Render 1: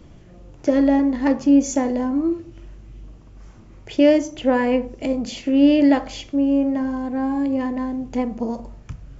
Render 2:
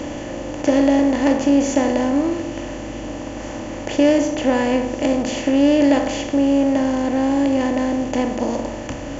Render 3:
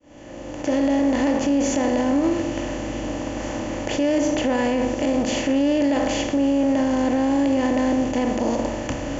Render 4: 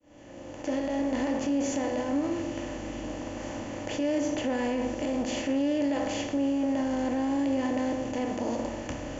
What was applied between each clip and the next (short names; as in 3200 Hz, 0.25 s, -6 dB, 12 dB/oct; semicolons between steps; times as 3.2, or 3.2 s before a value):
per-bin compression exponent 0.4; gain -3 dB
opening faded in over 1.07 s; limiter -14 dBFS, peak gain reduction 9.5 dB; gain +1.5 dB
flange 0.5 Hz, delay 9.7 ms, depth 3.4 ms, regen -58%; gain -4 dB